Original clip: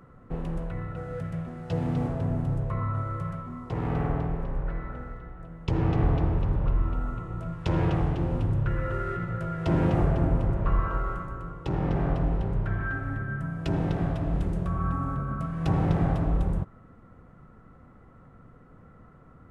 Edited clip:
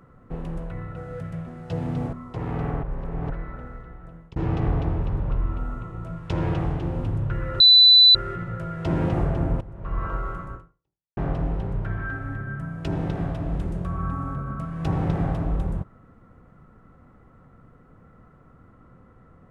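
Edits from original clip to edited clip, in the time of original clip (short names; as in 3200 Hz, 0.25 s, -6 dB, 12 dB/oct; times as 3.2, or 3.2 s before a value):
2.13–3.49 cut
4.19–4.66 reverse
5.42–5.72 fade out equal-power
8.96 add tone 3990 Hz -9 dBFS 0.55 s
10.42–10.86 fade in quadratic, from -16 dB
11.36–11.98 fade out exponential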